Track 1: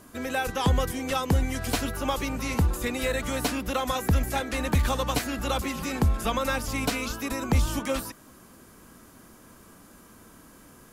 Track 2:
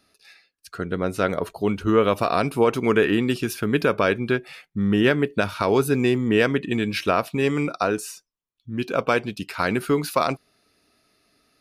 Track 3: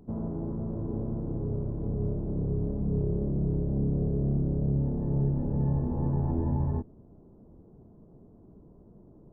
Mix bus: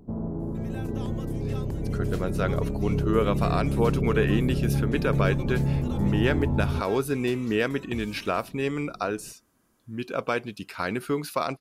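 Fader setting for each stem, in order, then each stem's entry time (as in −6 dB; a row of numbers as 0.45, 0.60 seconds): −17.0, −6.0, +2.0 decibels; 0.40, 1.20, 0.00 seconds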